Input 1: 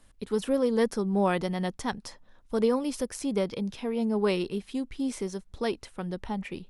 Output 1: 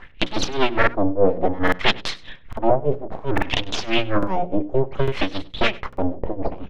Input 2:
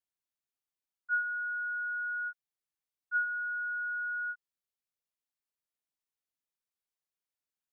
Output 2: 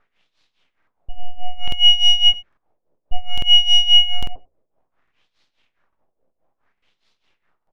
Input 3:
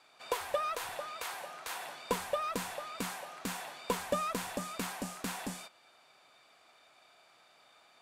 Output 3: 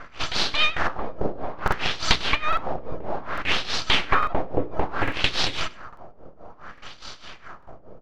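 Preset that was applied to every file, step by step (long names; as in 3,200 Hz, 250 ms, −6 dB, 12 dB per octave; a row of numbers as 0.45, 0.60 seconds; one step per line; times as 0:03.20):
sub-octave generator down 1 octave, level +3 dB
flat-topped bell 2,700 Hz +12 dB 1.3 octaves
downward compressor 2 to 1, threshold −37 dBFS
full-wave rectification
amplitude tremolo 4.8 Hz, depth 87%
auto-filter low-pass sine 0.6 Hz 530–4,100 Hz
mains-hum notches 60/120/180/240/300/360/420/480/540 Hz
single-tap delay 98 ms −21.5 dB
regular buffer underruns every 0.85 s, samples 2,048, repeat, from 0:00.78
normalise the peak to −1.5 dBFS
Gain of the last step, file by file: +18.5, +27.5, +19.5 decibels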